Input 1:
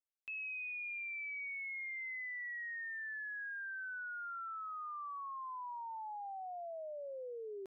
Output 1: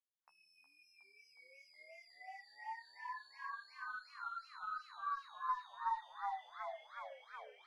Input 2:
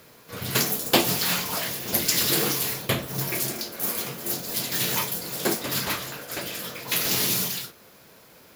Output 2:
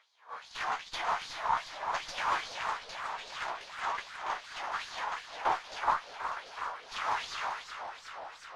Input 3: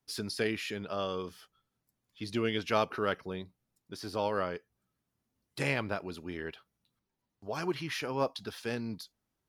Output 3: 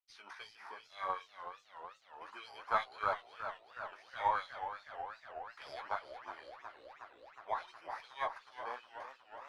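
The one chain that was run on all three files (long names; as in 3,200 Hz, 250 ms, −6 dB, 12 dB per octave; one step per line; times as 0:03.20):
samples in bit-reversed order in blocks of 16 samples
parametric band 850 Hz +13.5 dB 1.2 octaves
auto-filter high-pass sine 2.5 Hz 1,000–4,600 Hz
flanger 0.98 Hz, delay 9.2 ms, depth 7.9 ms, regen −22%
harmonic generator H 8 −34 dB, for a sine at −5.5 dBFS
head-to-tape spacing loss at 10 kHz 35 dB
feedback echo with a swinging delay time 369 ms, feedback 75%, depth 144 cents, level −10 dB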